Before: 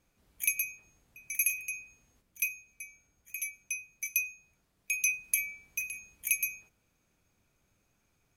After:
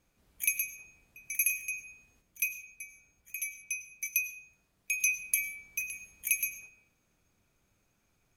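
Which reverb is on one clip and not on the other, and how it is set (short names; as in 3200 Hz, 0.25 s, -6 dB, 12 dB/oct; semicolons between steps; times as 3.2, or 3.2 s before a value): digital reverb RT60 0.84 s, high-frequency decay 0.55×, pre-delay 65 ms, DRR 11 dB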